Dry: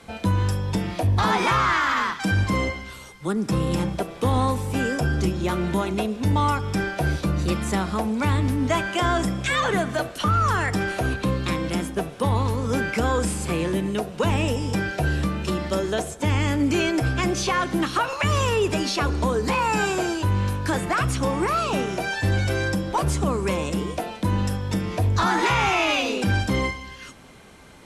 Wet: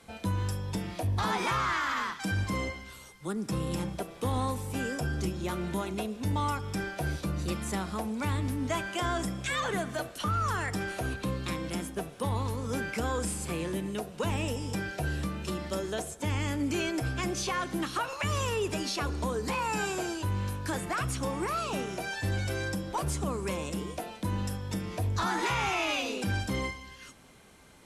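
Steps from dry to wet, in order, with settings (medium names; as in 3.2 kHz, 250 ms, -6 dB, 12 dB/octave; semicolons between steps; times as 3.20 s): treble shelf 6.9 kHz +7.5 dB; trim -9 dB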